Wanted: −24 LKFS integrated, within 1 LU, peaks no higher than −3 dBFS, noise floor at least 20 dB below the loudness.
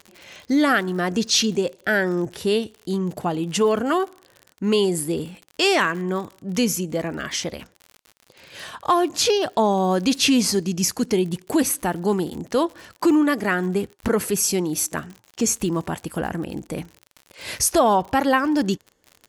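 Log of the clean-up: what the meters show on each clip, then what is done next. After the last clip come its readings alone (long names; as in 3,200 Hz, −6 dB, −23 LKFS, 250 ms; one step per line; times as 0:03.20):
crackle rate 56 per second; integrated loudness −22.0 LKFS; sample peak −6.5 dBFS; target loudness −24.0 LKFS
→ click removal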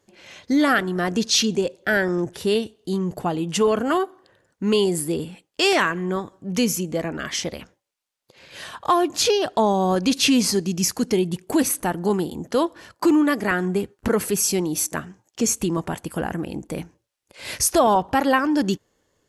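crackle rate 0 per second; integrated loudness −22.0 LKFS; sample peak −6.5 dBFS; target loudness −24.0 LKFS
→ level −2 dB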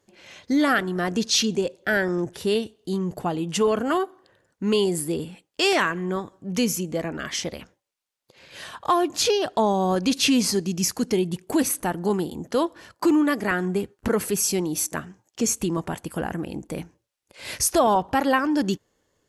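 integrated loudness −24.0 LKFS; sample peak −8.5 dBFS; background noise floor −76 dBFS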